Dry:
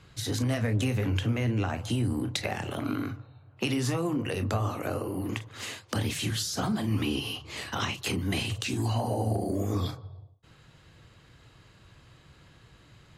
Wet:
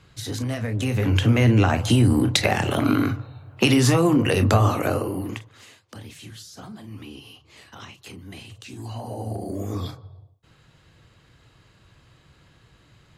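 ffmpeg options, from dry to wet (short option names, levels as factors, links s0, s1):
-af "volume=12.6,afade=t=in:st=0.76:d=0.66:silence=0.298538,afade=t=out:st=4.68:d=0.63:silence=0.316228,afade=t=out:st=5.31:d=0.33:silence=0.251189,afade=t=in:st=8.58:d=1.07:silence=0.281838"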